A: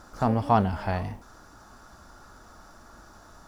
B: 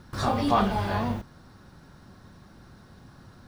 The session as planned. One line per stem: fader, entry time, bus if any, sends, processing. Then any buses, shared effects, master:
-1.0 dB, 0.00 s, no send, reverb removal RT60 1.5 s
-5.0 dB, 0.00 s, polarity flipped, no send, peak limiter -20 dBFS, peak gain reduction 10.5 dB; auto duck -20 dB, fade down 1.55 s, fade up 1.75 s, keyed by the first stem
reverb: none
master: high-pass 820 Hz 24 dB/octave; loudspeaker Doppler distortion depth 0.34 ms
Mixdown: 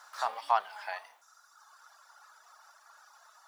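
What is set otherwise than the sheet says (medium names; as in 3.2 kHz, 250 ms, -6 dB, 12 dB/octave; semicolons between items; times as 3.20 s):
stem B: polarity flipped; master: missing loudspeaker Doppler distortion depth 0.34 ms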